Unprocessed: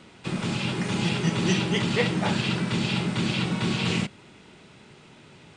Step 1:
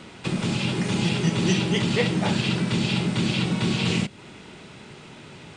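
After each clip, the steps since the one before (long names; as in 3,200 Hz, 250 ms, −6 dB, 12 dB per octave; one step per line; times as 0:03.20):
dynamic equaliser 1,300 Hz, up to −4 dB, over −42 dBFS, Q 0.83
in parallel at +1.5 dB: downward compressor, threshold −34 dBFS, peak gain reduction 14.5 dB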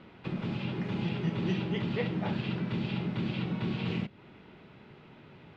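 high-frequency loss of the air 330 metres
level −8 dB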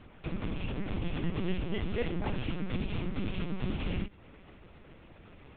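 linear-prediction vocoder at 8 kHz pitch kept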